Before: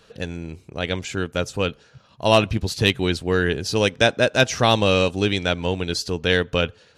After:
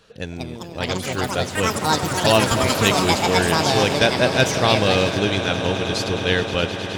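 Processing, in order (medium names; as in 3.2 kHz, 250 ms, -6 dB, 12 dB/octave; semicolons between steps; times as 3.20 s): echo with a slow build-up 105 ms, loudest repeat 8, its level -16 dB; ever faster or slower copies 252 ms, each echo +6 st, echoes 3; trim -1 dB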